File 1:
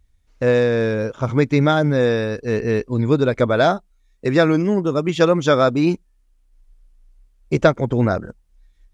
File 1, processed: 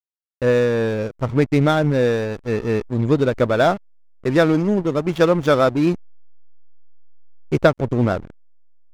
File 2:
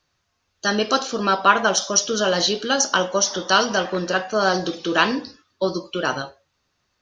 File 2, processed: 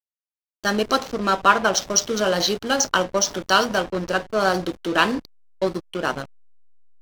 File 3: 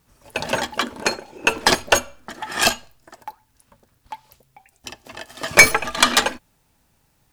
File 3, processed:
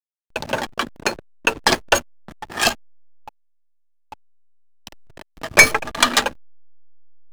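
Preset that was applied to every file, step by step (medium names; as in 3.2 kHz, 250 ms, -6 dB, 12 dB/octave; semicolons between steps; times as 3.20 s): hysteresis with a dead band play -22 dBFS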